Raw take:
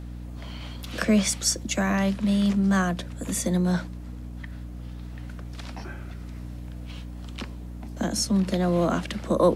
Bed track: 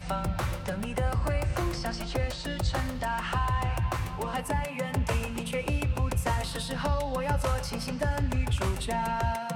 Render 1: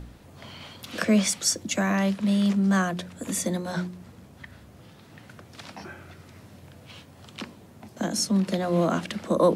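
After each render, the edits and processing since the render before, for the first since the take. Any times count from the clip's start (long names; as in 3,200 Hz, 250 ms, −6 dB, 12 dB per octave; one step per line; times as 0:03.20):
hum removal 60 Hz, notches 6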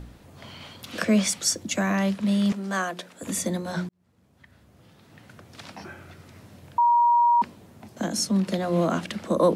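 0:02.52–0:03.23: high-pass filter 350 Hz
0:03.89–0:05.62: fade in
0:06.78–0:07.42: beep over 951 Hz −15.5 dBFS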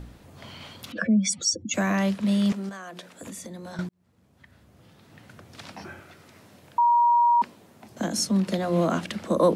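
0:00.92–0:01.74: expanding power law on the bin magnitudes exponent 2.3
0:02.69–0:03.79: downward compressor 12 to 1, threshold −35 dBFS
0:06.00–0:07.90: high-pass filter 280 Hz 6 dB per octave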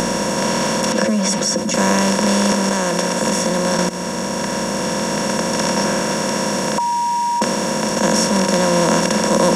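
compressor on every frequency bin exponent 0.2
level that may rise only so fast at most 130 dB per second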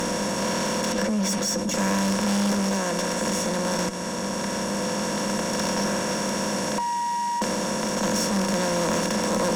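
tuned comb filter 100 Hz, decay 0.18 s, harmonics all, mix 60%
tube saturation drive 19 dB, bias 0.3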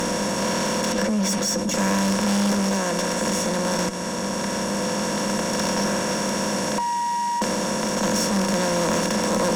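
level +2 dB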